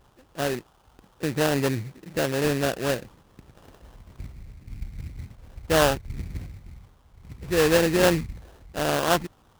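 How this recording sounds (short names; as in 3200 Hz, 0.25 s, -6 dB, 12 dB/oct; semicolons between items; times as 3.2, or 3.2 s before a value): aliases and images of a low sample rate 2200 Hz, jitter 20%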